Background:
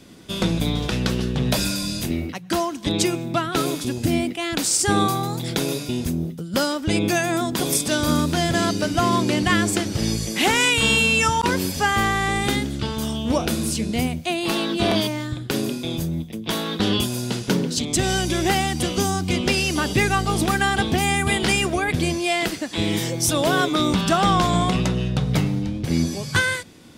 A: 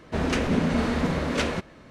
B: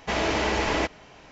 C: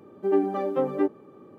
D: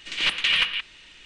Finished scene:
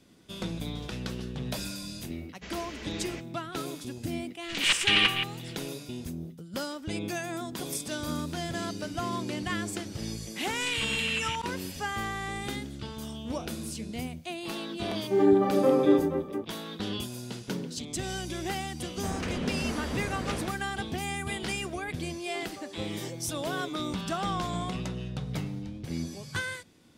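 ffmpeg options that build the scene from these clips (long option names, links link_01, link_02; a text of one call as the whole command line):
ffmpeg -i bed.wav -i cue0.wav -i cue1.wav -i cue2.wav -i cue3.wav -filter_complex "[4:a]asplit=2[link_01][link_02];[3:a]asplit=2[link_03][link_04];[0:a]volume=-13dB[link_05];[2:a]equalizer=frequency=840:width_type=o:width=1.3:gain=-13.5[link_06];[link_02]acompressor=threshold=-28dB:ratio=6:attack=3.2:release=140:knee=1:detection=peak[link_07];[link_03]aecho=1:1:30|78|154.8|277.7|474.3:0.794|0.631|0.501|0.398|0.316[link_08];[link_04]highpass=440[link_09];[link_06]atrim=end=1.31,asetpts=PTS-STARTPTS,volume=-13.5dB,afade=type=in:duration=0.004:curve=hsin,afade=type=out:start_time=1.306:duration=0.004:curve=hsin,adelay=2340[link_10];[link_01]atrim=end=1.25,asetpts=PTS-STARTPTS,volume=-1.5dB,afade=type=in:duration=0.004:curve=hsin,afade=type=out:start_time=1.246:duration=0.004:curve=hsin,adelay=4430[link_11];[link_07]atrim=end=1.25,asetpts=PTS-STARTPTS,volume=-3dB,afade=type=in:duration=0.004:curve=hsin,afade=type=out:start_time=1.246:duration=0.004:curve=hsin,adelay=10550[link_12];[link_08]atrim=end=1.58,asetpts=PTS-STARTPTS,volume=-0.5dB,afade=type=in:duration=0.004:curve=hsin,afade=type=out:start_time=1.576:duration=0.004:curve=hsin,adelay=14870[link_13];[1:a]atrim=end=1.9,asetpts=PTS-STARTPTS,volume=-9.5dB,afade=type=in:duration=0.004:curve=hsin,afade=type=out:start_time=1.896:duration=0.004:curve=hsin,adelay=18900[link_14];[link_09]atrim=end=1.58,asetpts=PTS-STARTPTS,volume=-15dB,afade=type=in:duration=0.004:curve=hsin,afade=type=out:start_time=1.576:duration=0.004:curve=hsin,adelay=22020[link_15];[link_05][link_10][link_11][link_12][link_13][link_14][link_15]amix=inputs=7:normalize=0" out.wav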